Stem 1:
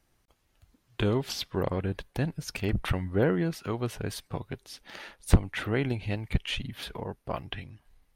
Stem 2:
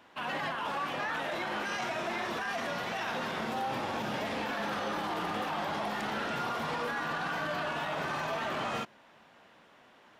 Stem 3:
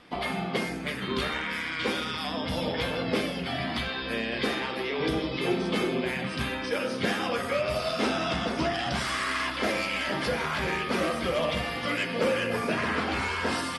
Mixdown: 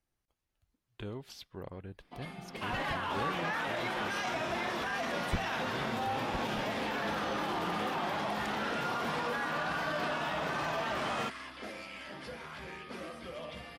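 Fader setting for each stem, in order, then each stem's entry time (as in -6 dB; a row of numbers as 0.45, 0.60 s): -15.0, -0.5, -16.0 dB; 0.00, 2.45, 2.00 s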